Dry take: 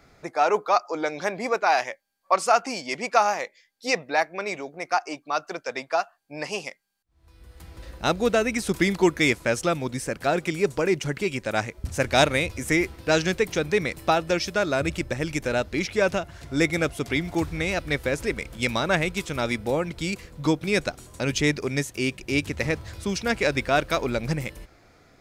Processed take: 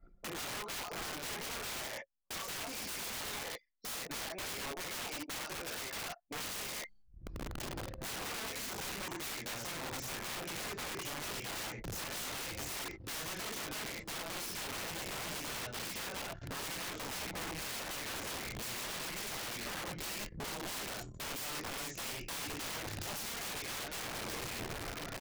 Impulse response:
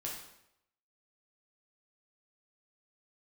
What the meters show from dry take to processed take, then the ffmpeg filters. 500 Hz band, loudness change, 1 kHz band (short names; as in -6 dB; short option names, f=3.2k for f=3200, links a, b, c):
-21.5 dB, -14.5 dB, -18.0 dB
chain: -filter_complex "[0:a]highshelf=f=5.8k:g=3.5[a];[1:a]atrim=start_sample=2205,afade=t=out:st=0.17:d=0.01,atrim=end_sample=7938[b];[a][b]afir=irnorm=-1:irlink=0,areverse,acompressor=mode=upward:threshold=-28dB:ratio=2.5,areverse,anlmdn=0.251,aresample=16000,aresample=44100,acompressor=threshold=-36dB:ratio=8,aeval=exprs='(mod(75*val(0)+1,2)-1)/75':c=same,volume=1.5dB"